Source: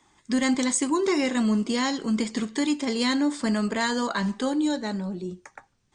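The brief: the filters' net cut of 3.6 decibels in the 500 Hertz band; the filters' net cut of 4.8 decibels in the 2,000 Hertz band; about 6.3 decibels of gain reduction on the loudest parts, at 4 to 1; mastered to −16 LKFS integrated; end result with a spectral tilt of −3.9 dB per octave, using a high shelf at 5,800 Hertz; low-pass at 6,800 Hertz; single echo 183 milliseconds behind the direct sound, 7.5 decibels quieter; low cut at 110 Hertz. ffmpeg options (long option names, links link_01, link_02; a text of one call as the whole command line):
ffmpeg -i in.wav -af "highpass=110,lowpass=6800,equalizer=frequency=500:width_type=o:gain=-4.5,equalizer=frequency=2000:width_type=o:gain=-6,highshelf=frequency=5800:gain=6.5,acompressor=threshold=-29dB:ratio=4,aecho=1:1:183:0.422,volume=15.5dB" out.wav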